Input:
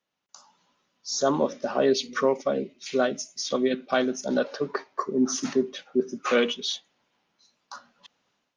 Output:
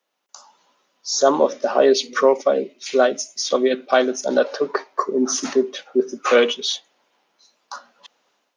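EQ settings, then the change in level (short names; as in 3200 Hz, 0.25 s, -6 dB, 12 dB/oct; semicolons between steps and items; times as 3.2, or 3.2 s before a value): HPF 460 Hz 12 dB/oct; tilt shelf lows +4.5 dB, about 860 Hz; high shelf 6200 Hz +6 dB; +8.5 dB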